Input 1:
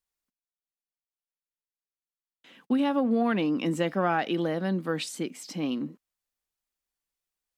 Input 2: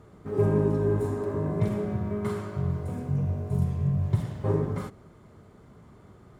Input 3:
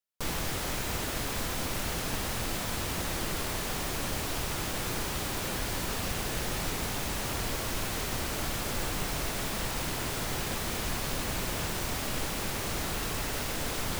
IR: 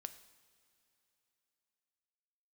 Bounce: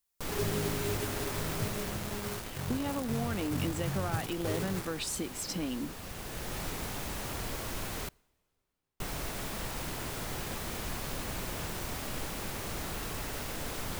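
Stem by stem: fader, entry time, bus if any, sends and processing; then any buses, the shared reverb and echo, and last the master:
+1.0 dB, 0.00 s, no send, downward compressor, threshold −34 dBFS, peak gain reduction 13 dB
−10.5 dB, 0.00 s, no send, high-pass filter 50 Hz 24 dB per octave; bit reduction 5 bits
−5.5 dB, 0.00 s, muted 0:08.09–0:09.00, send −10.5 dB, high-shelf EQ 3,500 Hz −8 dB; automatic ducking −9 dB, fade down 0.95 s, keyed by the first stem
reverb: on, pre-delay 3 ms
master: high-shelf EQ 6,300 Hz +8.5 dB

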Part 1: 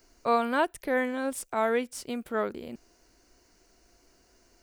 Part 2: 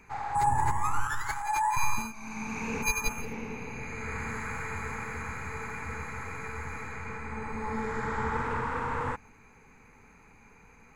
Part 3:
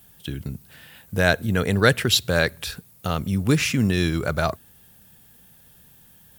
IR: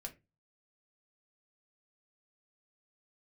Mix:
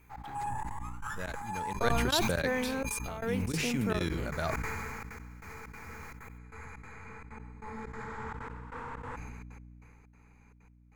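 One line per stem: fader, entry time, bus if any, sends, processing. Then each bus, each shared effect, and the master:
+1.5 dB, 1.55 s, no send, downward compressor 3 to 1, threshold −34 dBFS, peak gain reduction 11.5 dB
−9.0 dB, 0.00 s, no send, soft clipping −19.5 dBFS, distortion −19 dB
0:01.61 −20 dB → 0:02.15 −11.5 dB, 0.00 s, no send, mains-hum notches 50/100/150 Hz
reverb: not used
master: gate pattern "xx.xxxxx.x...x" 191 BPM −24 dB; mains hum 60 Hz, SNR 22 dB; level that may fall only so fast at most 20 dB per second

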